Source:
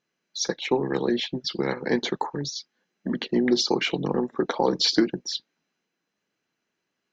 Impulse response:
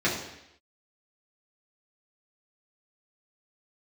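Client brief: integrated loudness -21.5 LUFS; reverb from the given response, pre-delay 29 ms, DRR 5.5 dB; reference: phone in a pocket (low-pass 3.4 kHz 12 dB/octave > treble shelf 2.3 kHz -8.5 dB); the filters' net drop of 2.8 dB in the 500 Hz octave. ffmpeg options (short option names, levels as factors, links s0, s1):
-filter_complex "[0:a]equalizer=f=500:t=o:g=-3.5,asplit=2[s0][s1];[1:a]atrim=start_sample=2205,adelay=29[s2];[s1][s2]afir=irnorm=-1:irlink=0,volume=0.112[s3];[s0][s3]amix=inputs=2:normalize=0,lowpass=3400,highshelf=f=2300:g=-8.5,volume=1.68"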